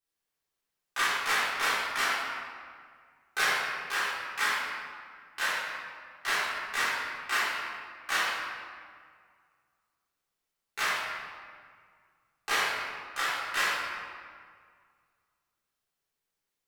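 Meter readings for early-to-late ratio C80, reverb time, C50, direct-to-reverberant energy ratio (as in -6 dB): -0.5 dB, 1.9 s, -3.0 dB, -12.5 dB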